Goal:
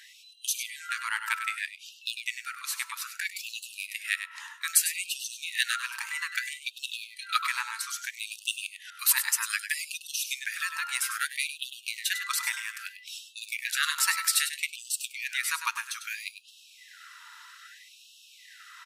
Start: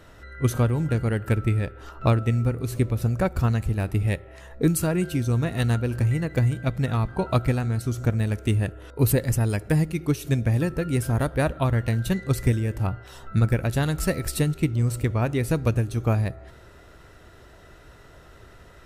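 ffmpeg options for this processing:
ffmpeg -i in.wav -af "equalizer=frequency=4800:width=0.64:gain=4,aecho=1:1:100:0.335,afftfilt=real='re*gte(b*sr/1024,850*pow(2600/850,0.5+0.5*sin(2*PI*0.62*pts/sr)))':imag='im*gte(b*sr/1024,850*pow(2600/850,0.5+0.5*sin(2*PI*0.62*pts/sr)))':win_size=1024:overlap=0.75,volume=5dB" out.wav

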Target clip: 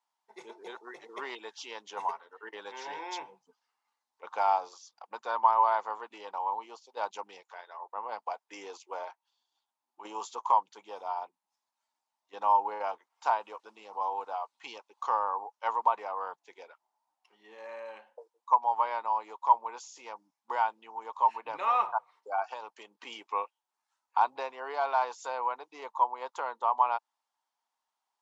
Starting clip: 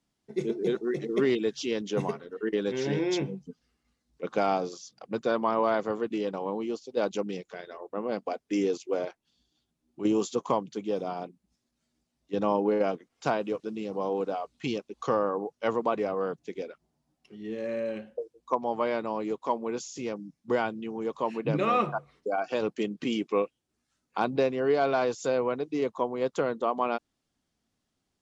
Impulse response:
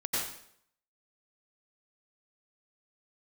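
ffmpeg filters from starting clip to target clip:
-filter_complex "[0:a]asettb=1/sr,asplit=3[link_01][link_02][link_03];[link_01]atrim=end=22.504[link_04];[link_02]atrim=start=22.5:end=22.99,asetpts=PTS-STARTPTS,afade=type=in:duration=0.004:curve=qsin,afade=type=out:start_time=0.486:duration=0.004:curve=qsin,acrossover=split=1300|2700[link_05][link_06][link_07];[link_05]acompressor=threshold=-31dB:ratio=4[link_08];[link_06]acompressor=threshold=-52dB:ratio=4[link_09];[link_07]acompressor=threshold=-48dB:ratio=4[link_10];[link_08][link_09][link_10]amix=inputs=3:normalize=0[link_11];[link_03]atrim=start=22.986[link_12];[link_04][link_11]acrossfade=duration=0.004:curve1=hsin:curve2=qsin[link_13];[link_13][link_12]acrossfade=duration=0.004:curve1=qsin:curve2=hsin,highpass=frequency=910:width_type=q:width=8,volume=-7dB"

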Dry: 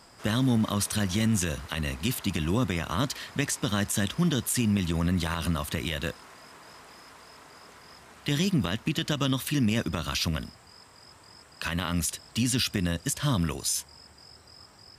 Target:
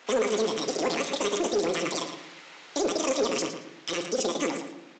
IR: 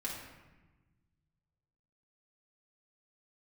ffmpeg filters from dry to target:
-filter_complex "[0:a]atempo=1.5,asplit=2[link_01][link_02];[1:a]atrim=start_sample=2205,adelay=15[link_03];[link_02][link_03]afir=irnorm=-1:irlink=0,volume=-9dB[link_04];[link_01][link_04]amix=inputs=2:normalize=0,asetrate=88200,aresample=44100,highpass=350,asplit=2[link_05][link_06];[link_06]adelay=113,lowpass=frequency=4400:poles=1,volume=-9dB,asplit=2[link_07][link_08];[link_08]adelay=113,lowpass=frequency=4400:poles=1,volume=0.36,asplit=2[link_09][link_10];[link_10]adelay=113,lowpass=frequency=4400:poles=1,volume=0.36,asplit=2[link_11][link_12];[link_12]adelay=113,lowpass=frequency=4400:poles=1,volume=0.36[link_13];[link_05][link_07][link_09][link_11][link_13]amix=inputs=5:normalize=0,aresample=16000,asoftclip=type=tanh:threshold=-21dB,aresample=44100,volume=3dB"

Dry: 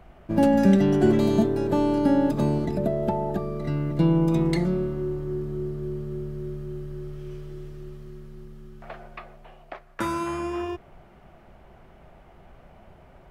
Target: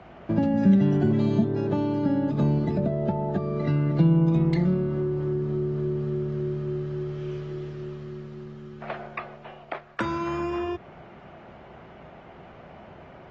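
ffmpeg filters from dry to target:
ffmpeg -i in.wav -filter_complex "[0:a]acrossover=split=180[link_01][link_02];[link_02]acompressor=threshold=-33dB:ratio=8[link_03];[link_01][link_03]amix=inputs=2:normalize=0,highpass=110,lowpass=4700,volume=6.5dB" -ar 32000 -c:a aac -b:a 24k out.aac

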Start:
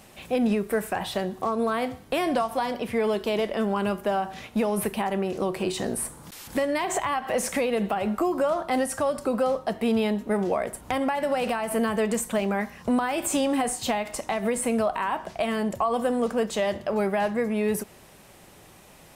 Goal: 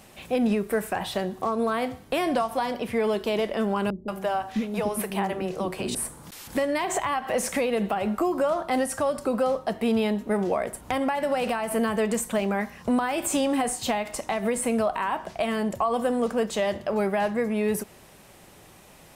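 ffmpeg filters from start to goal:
ffmpeg -i in.wav -filter_complex "[0:a]asettb=1/sr,asplit=3[link_01][link_02][link_03];[link_01]atrim=end=3.904[link_04];[link_02]atrim=start=3.9:end=5.95,asetpts=PTS-STARTPTS,afade=type=in:duration=0.004:curve=qsin,afade=type=out:start_time=2.046:duration=0.004:curve=qsin,acrossover=split=370[link_05][link_06];[link_06]adelay=180[link_07];[link_05][link_07]amix=inputs=2:normalize=0,atrim=end_sample=90405[link_08];[link_03]atrim=start=5.946[link_09];[link_04][link_08]acrossfade=duration=0.004:curve1=hsin:curve2=qsin[link_10];[link_10][link_09]acrossfade=duration=0.004:curve1=qsin:curve2=hsin" out.wav

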